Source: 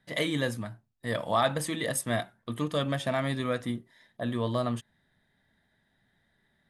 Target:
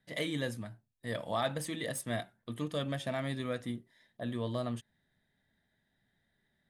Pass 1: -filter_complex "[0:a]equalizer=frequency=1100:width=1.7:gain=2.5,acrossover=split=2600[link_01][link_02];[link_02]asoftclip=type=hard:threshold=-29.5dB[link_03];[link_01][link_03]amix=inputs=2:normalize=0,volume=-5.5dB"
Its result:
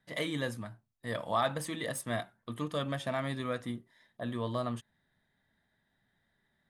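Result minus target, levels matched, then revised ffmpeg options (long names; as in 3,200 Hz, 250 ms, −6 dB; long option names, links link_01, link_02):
1,000 Hz band +3.5 dB
-filter_complex "[0:a]equalizer=frequency=1100:width=1.7:gain=-4.5,acrossover=split=2600[link_01][link_02];[link_02]asoftclip=type=hard:threshold=-29.5dB[link_03];[link_01][link_03]amix=inputs=2:normalize=0,volume=-5.5dB"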